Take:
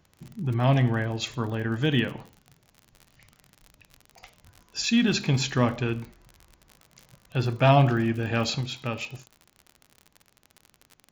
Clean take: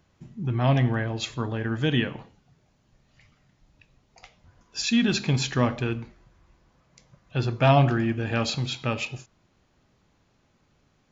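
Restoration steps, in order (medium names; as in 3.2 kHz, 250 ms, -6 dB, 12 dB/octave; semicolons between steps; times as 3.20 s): de-click; gain correction +3.5 dB, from 8.61 s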